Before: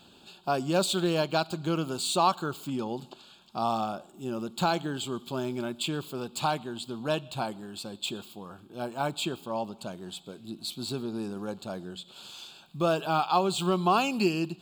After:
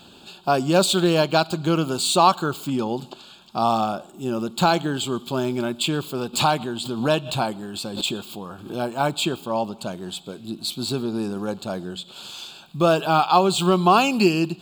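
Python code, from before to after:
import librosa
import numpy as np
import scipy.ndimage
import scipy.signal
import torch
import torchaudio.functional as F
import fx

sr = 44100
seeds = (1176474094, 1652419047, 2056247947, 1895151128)

y = fx.pre_swell(x, sr, db_per_s=84.0, at=(6.33, 8.88), fade=0.02)
y = y * 10.0 ** (8.0 / 20.0)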